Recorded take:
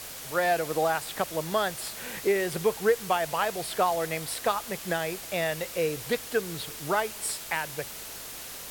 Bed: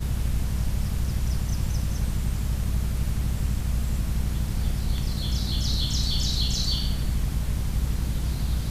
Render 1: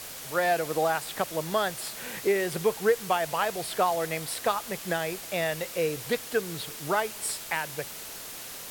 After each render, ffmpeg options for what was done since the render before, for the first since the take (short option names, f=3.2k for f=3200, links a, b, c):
-af "bandreject=f=50:t=h:w=4,bandreject=f=100:t=h:w=4"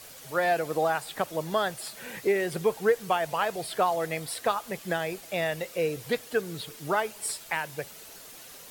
-af "afftdn=nr=8:nf=-41"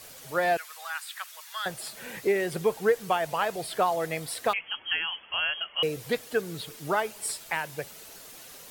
-filter_complex "[0:a]asettb=1/sr,asplit=3[a][b][c];[a]atrim=end=0.574[d];[b]atrim=start=0.57:end=1.66,asetpts=PTS-STARTPTS,afade=t=in:d=0.004:c=qsin,afade=t=out:st=1.086:d=0.004:c=qsin,highpass=f=1.3k:w=0.5412,highpass=f=1.3k:w=1.3066[e];[c]atrim=start=1.656[f];[d][e]acrossfade=d=0.004:c1=hsin:c2=qsin[g];[g][f]acrossfade=d=0.004:c1=qsin:c2=hsin,asettb=1/sr,asplit=3[h][i][j];[h]atrim=end=4.534[k];[i]atrim=start=4.53:end=5.83,asetpts=PTS-STARTPTS,afade=t=in:d=0.004:c=qsin,afade=t=out:st=1.296:d=0.004:c=qsin,lowpass=f=2.9k:t=q:w=0.5098,lowpass=f=2.9k:t=q:w=0.6013,lowpass=f=2.9k:t=q:w=0.9,lowpass=f=2.9k:t=q:w=2.563,afreqshift=-3400[l];[j]atrim=start=5.826[m];[k][l]acrossfade=d=0.004:c1=hsin:c2=qsin[n];[n][m]acrossfade=d=0.004:c1=qsin:c2=hsin"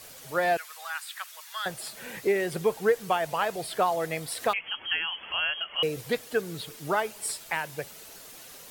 -filter_complex "[0:a]asettb=1/sr,asplit=3[a][b][c];[a]atrim=end=4.324[d];[b]atrim=start=4.32:end=6.01,asetpts=PTS-STARTPTS,afade=t=in:d=0.004:c=qsin,afade=t=out:st=1.686:d=0.004:c=qsin,acompressor=mode=upward:threshold=-31dB:ratio=2.5:attack=3.2:release=140:knee=2.83:detection=peak[e];[c]atrim=start=6.006[f];[d][e]acrossfade=d=0.004:c1=hsin:c2=qsin[g];[g][f]acrossfade=d=0.004:c1=qsin:c2=hsin"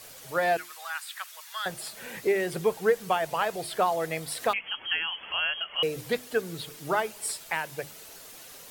-af "bandreject=f=50:t=h:w=6,bandreject=f=100:t=h:w=6,bandreject=f=150:t=h:w=6,bandreject=f=200:t=h:w=6,bandreject=f=250:t=h:w=6,bandreject=f=300:t=h:w=6,bandreject=f=350:t=h:w=6"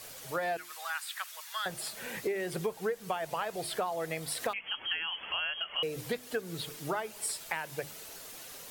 -af "acompressor=threshold=-31dB:ratio=4"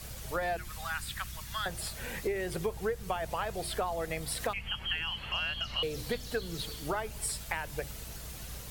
-filter_complex "[1:a]volume=-19.5dB[a];[0:a][a]amix=inputs=2:normalize=0"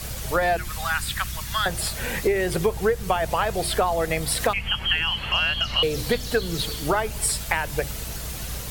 -af "volume=11dB"